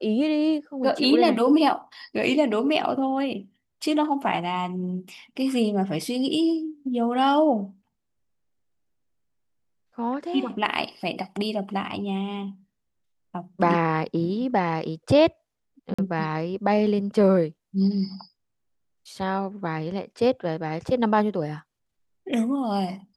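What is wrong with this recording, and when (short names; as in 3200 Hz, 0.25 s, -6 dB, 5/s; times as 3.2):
15.94–15.98 gap 45 ms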